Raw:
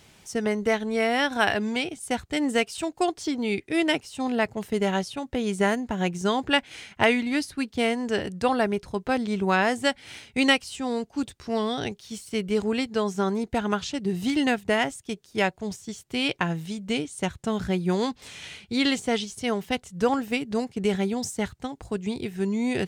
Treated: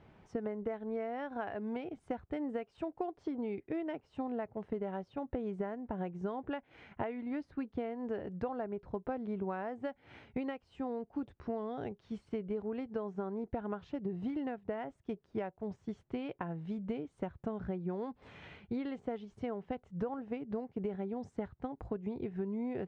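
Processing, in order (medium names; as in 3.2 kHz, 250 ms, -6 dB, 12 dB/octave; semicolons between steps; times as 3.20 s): dynamic bell 560 Hz, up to +4 dB, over -36 dBFS, Q 0.94; compression 12:1, threshold -31 dBFS, peak gain reduction 19 dB; low-pass 1.3 kHz 12 dB/octave; trim -2.5 dB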